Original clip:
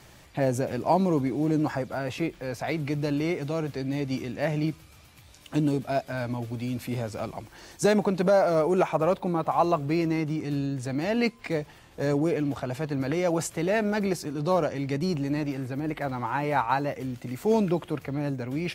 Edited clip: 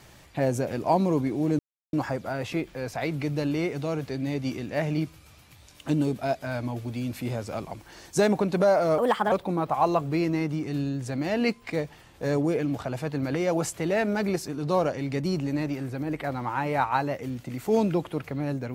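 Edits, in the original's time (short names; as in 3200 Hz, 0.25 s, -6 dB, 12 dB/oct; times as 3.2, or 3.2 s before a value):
1.59 insert silence 0.34 s
8.64–9.09 speed 133%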